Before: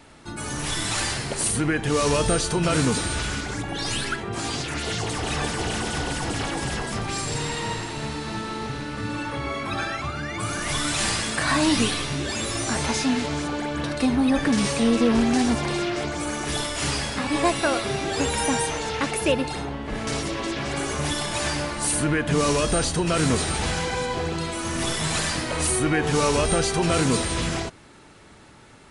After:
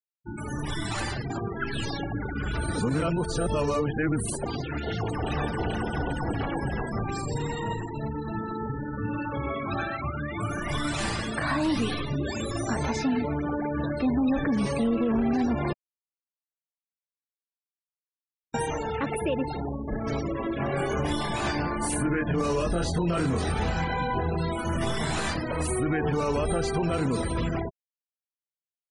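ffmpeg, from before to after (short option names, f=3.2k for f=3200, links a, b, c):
-filter_complex "[0:a]asettb=1/sr,asplit=3[a][b][c];[a]atrim=end=20.584[d];[b]atrim=start=20.58:end=25.34,asetpts=PTS-STARTPTS,afade=t=in:d=0.004:c=qsin,afade=t=out:st=4.756:d=0.004:c=qsin,asplit=2[e][f];[f]adelay=23,volume=-2dB[g];[e][g]amix=inputs=2:normalize=0,atrim=end_sample=209916[h];[c]atrim=start=25.336[i];[d][h]acrossfade=d=0.004:c1=hsin:c2=qsin[j];[j][i]acrossfade=d=0.004:c1=qsin:c2=hsin,asplit=5[k][l][m][n][o];[k]atrim=end=1.302[p];[l]atrim=start=1.298:end=4.462,asetpts=PTS-STARTPTS,areverse[q];[m]atrim=start=4.458:end=15.73,asetpts=PTS-STARTPTS,afade=t=out:st=11.268:d=0.004:c=hsin[r];[n]atrim=start=15.73:end=18.54,asetpts=PTS-STARTPTS,volume=0[s];[o]atrim=start=18.54,asetpts=PTS-STARTPTS,afade=t=in:d=0.004:c=hsin[t];[p][q]acrossfade=d=0.004:c1=hsin:c2=hsin[u];[r][s][t]concat=n=3:v=0:a=1[v];[u][v]acrossfade=d=0.004:c1=hsin:c2=hsin,afftfilt=real='re*gte(hypot(re,im),0.0501)':imag='im*gte(hypot(re,im),0.0501)':win_size=1024:overlap=0.75,highshelf=f=2.3k:g=-9.5,alimiter=limit=-18dB:level=0:latency=1:release=62"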